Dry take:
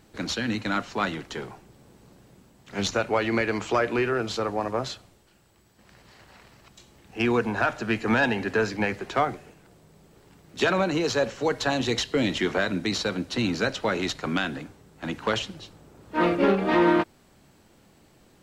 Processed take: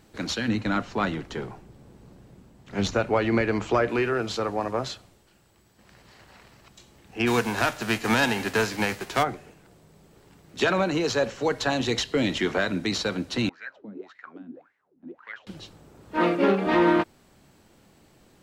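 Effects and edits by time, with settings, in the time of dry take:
0:00.48–0:03.89: spectral tilt −1.5 dB per octave
0:07.26–0:09.22: spectral envelope flattened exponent 0.6
0:13.49–0:15.47: LFO wah 1.8 Hz 220–2,000 Hz, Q 9.2
0:16.17–0:16.67: high-pass filter 150 Hz 24 dB per octave

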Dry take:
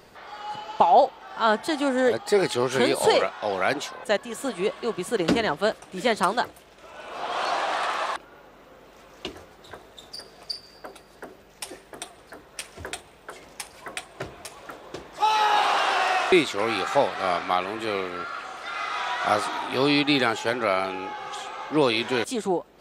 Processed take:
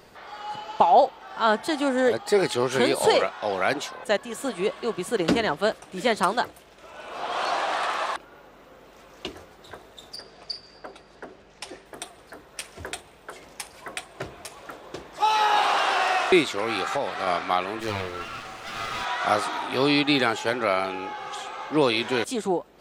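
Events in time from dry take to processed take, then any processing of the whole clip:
0:10.16–0:11.86: low-pass filter 6,500 Hz
0:16.54–0:17.27: downward compressor, threshold −21 dBFS
0:17.80–0:19.05: lower of the sound and its delayed copy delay 9 ms

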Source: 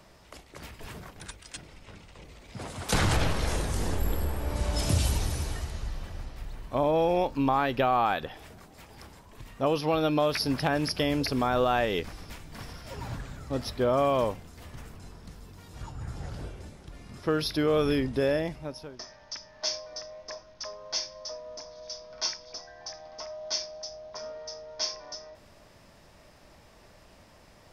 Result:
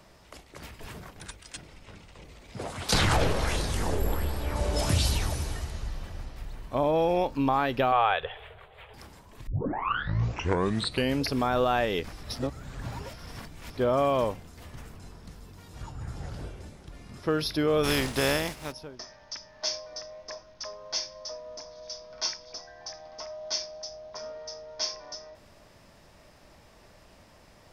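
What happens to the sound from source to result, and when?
0:02.57–0:05.34: auto-filter bell 1.4 Hz 410–4,700 Hz +9 dB
0:07.92–0:08.94: drawn EQ curve 110 Hz 0 dB, 280 Hz −25 dB, 430 Hz +4 dB, 830 Hz +1 dB, 3,400 Hz +6 dB, 5,400 Hz −27 dB, 8,900 Hz −16 dB
0:09.47: tape start 1.77 s
0:12.23–0:13.77: reverse
0:17.83–0:18.71: compressing power law on the bin magnitudes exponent 0.53

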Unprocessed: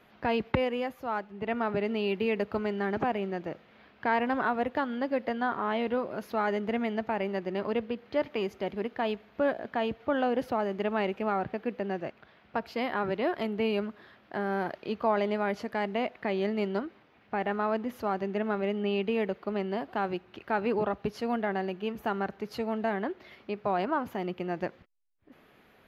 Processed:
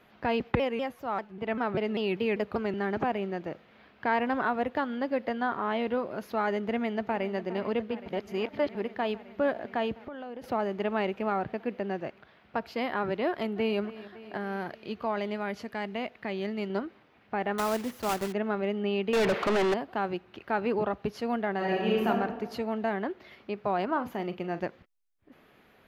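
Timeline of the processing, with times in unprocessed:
0:00.40–0:02.74: pitch modulation by a square or saw wave saw down 5.1 Hz, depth 160 cents
0:06.56–0:07.33: delay throw 410 ms, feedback 85%, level −15 dB
0:08.06–0:08.75: reverse
0:10.01–0:10.44: downward compressor 16 to 1, threshold −36 dBFS
0:13.28–0:13.79: delay throw 280 ms, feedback 75%, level −17 dB
0:14.37–0:16.70: parametric band 580 Hz −5 dB 2.9 octaves
0:17.58–0:18.33: one scale factor per block 3 bits
0:19.13–0:19.74: mid-hump overdrive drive 34 dB, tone 3,900 Hz, clips at −18.5 dBFS
0:21.57–0:22.07: thrown reverb, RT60 1.3 s, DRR −7 dB
0:23.86–0:24.60: double-tracking delay 41 ms −12.5 dB

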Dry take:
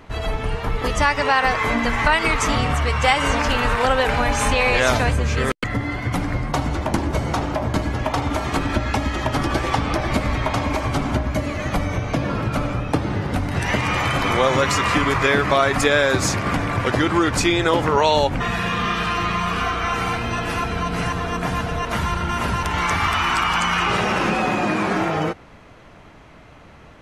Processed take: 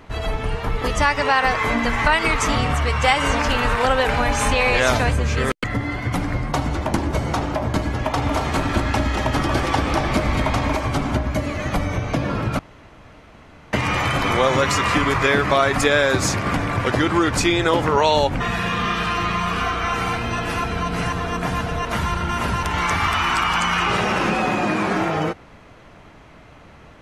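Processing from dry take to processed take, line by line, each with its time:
0:07.96–0:10.73: single-tap delay 232 ms −5 dB
0:12.59–0:13.73: fill with room tone

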